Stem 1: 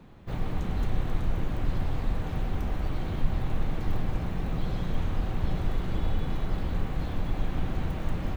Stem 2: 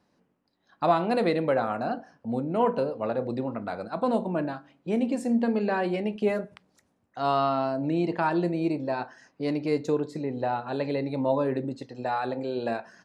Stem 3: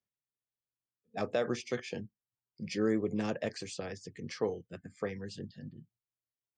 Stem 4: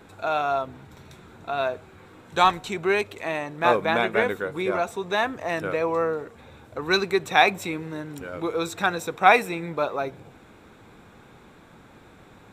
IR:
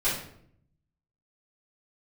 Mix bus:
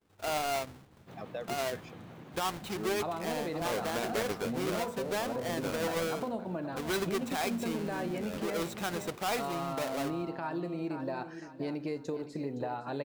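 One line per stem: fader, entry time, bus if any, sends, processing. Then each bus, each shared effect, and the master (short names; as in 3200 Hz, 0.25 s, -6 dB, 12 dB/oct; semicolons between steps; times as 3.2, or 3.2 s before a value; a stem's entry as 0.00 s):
-10.5 dB, 0.80 s, bus A, no send, no echo send, HPF 140 Hz 24 dB/oct; limiter -30 dBFS, peak gain reduction 6.5 dB
0.0 dB, 2.20 s, bus A, no send, echo send -19.5 dB, dry
-5.0 dB, 0.00 s, bus A, no send, no echo send, per-bin expansion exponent 2
-11.5 dB, 0.00 s, no bus, no send, no echo send, half-waves squared off; expander -35 dBFS
bus A: 0.0 dB, short-mantissa float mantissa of 6-bit; compressor 6:1, threshold -33 dBFS, peak gain reduction 15.5 dB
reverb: off
echo: feedback echo 0.516 s, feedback 33%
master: limiter -25 dBFS, peak gain reduction 11.5 dB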